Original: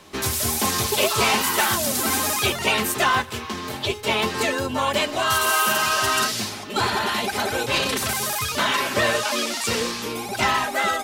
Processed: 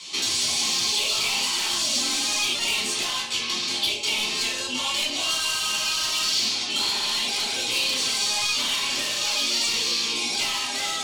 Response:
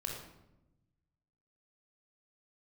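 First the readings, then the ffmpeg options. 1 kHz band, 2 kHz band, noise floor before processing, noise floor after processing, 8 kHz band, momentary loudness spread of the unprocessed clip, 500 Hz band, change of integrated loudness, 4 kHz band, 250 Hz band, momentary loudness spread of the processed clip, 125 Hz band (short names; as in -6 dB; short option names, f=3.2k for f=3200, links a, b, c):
-11.0 dB, -5.0 dB, -34 dBFS, -29 dBFS, +0.5 dB, 6 LU, -13.0 dB, -1.0 dB, +4.0 dB, -9.5 dB, 3 LU, -15.5 dB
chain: -filter_complex "[0:a]asplit=2[a][b];[b]alimiter=limit=-16.5dB:level=0:latency=1,volume=1.5dB[c];[a][c]amix=inputs=2:normalize=0,highpass=190,equalizer=f=200:t=q:w=4:g=-8,equalizer=f=1.7k:t=q:w=4:g=8,equalizer=f=2.7k:t=q:w=4:g=4,equalizer=f=4.2k:t=q:w=4:g=6,lowpass=f=8k:w=0.5412,lowpass=f=8k:w=1.3066,asoftclip=type=tanh:threshold=-14dB,acrossover=split=1500|5400[d][e][f];[d]acompressor=threshold=-25dB:ratio=4[g];[e]acompressor=threshold=-29dB:ratio=4[h];[f]acompressor=threshold=-42dB:ratio=4[i];[g][h][i]amix=inputs=3:normalize=0[j];[1:a]atrim=start_sample=2205,asetrate=83790,aresample=44100[k];[j][k]afir=irnorm=-1:irlink=0,aexciter=amount=5.7:drive=7.5:freq=2.5k,volume=-6dB"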